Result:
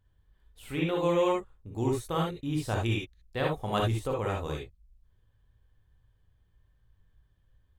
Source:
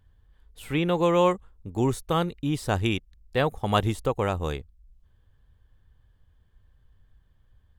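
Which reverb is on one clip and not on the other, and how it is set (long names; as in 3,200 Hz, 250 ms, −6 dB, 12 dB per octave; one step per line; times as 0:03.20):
reverb whose tail is shaped and stops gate 90 ms rising, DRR −1 dB
level −8 dB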